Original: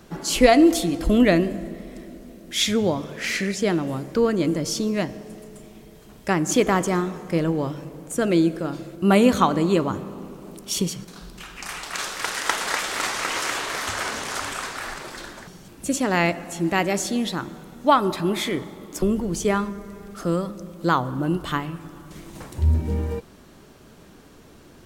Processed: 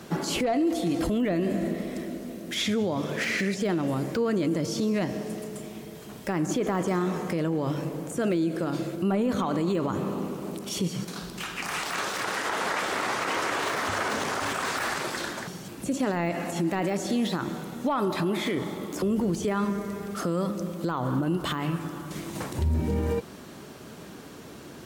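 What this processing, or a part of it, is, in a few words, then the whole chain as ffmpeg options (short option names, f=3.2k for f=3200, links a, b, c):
podcast mastering chain: -af "highpass=100,deesser=0.9,acompressor=threshold=-27dB:ratio=2,alimiter=limit=-24dB:level=0:latency=1:release=35,volume=6dB" -ar 44100 -c:a libmp3lame -b:a 96k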